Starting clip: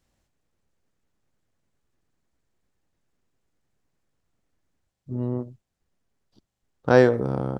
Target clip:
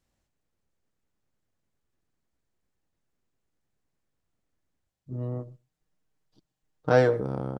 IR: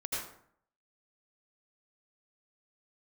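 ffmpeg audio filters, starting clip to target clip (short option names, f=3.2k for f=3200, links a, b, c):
-filter_complex "[0:a]asettb=1/sr,asplit=3[a][b][c];[a]atrim=end=5.124[d];[b]atrim=start=5.12:end=7.21,asetpts=PTS-STARTPTS,afade=t=in:d=0.004:c=qsin,afade=t=out:st=2.086:d=0.004:c=qsin,aecho=1:1:6.5:0.65,atrim=end_sample=92169[e];[c]atrim=start=7.206[f];[d][e]acrossfade=d=0.004:c1=hsin:c2=qsin[g];[g][f]acrossfade=d=0.004:c1=qsin:c2=hsin,asplit=2[h][i];[i]adelay=128.3,volume=-27dB,highshelf=f=4k:g=-2.89[j];[h][j]amix=inputs=2:normalize=0,volume=-5dB"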